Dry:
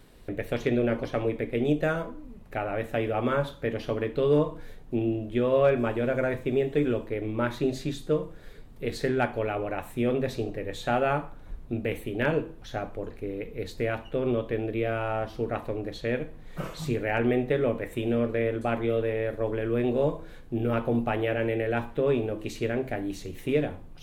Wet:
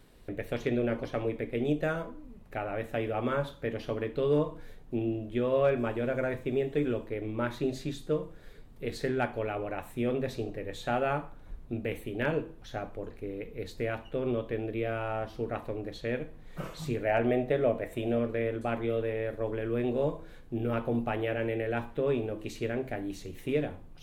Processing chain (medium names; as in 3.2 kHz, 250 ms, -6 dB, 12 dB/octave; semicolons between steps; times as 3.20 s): 17.05–18.19 s: peaking EQ 650 Hz +11.5 dB 0.31 oct; trim -4 dB